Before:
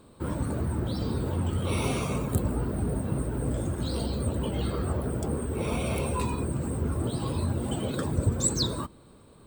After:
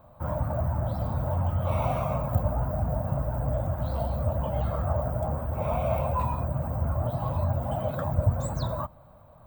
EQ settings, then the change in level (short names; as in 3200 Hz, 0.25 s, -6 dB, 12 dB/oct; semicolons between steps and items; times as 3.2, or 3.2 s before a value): EQ curve 130 Hz 0 dB, 420 Hz -19 dB, 610 Hz +9 dB, 4800 Hz -20 dB, 7000 Hz -18 dB, 10000 Hz -21 dB, 16000 Hz +3 dB; +2.5 dB